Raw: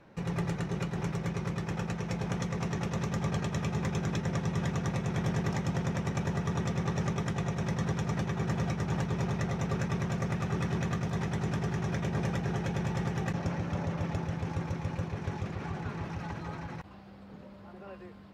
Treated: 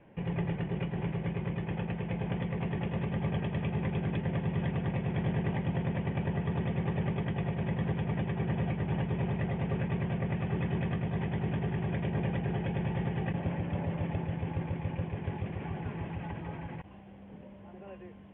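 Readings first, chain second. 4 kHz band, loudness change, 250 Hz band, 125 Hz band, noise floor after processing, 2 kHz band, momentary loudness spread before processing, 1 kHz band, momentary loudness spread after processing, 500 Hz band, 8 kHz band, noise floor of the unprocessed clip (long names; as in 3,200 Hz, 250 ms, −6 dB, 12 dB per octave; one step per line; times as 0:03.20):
−5.0 dB, −0.5 dB, 0.0 dB, 0.0 dB, −50 dBFS, −2.5 dB, 7 LU, −3.0 dB, 7 LU, −0.5 dB, below −35 dB, −50 dBFS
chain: Butterworth low-pass 3,300 Hz 96 dB per octave
parametric band 1,300 Hz −11.5 dB 0.44 octaves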